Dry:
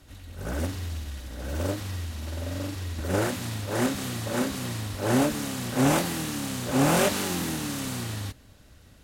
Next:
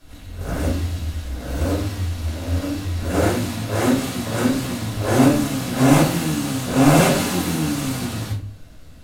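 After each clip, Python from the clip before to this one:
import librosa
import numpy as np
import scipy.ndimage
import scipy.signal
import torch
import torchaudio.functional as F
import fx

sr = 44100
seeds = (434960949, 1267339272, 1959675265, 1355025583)

y = fx.room_shoebox(x, sr, seeds[0], volume_m3=290.0, walls='furnished', distance_m=5.5)
y = F.gain(torch.from_numpy(y), -3.0).numpy()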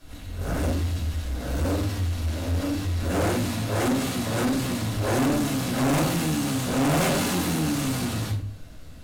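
y = 10.0 ** (-19.5 / 20.0) * np.tanh(x / 10.0 ** (-19.5 / 20.0))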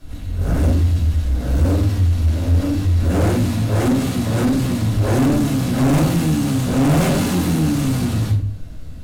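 y = fx.low_shelf(x, sr, hz=320.0, db=10.5)
y = F.gain(torch.from_numpy(y), 1.0).numpy()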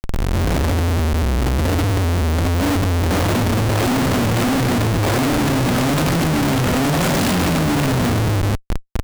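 y = fx.schmitt(x, sr, flips_db=-29.0)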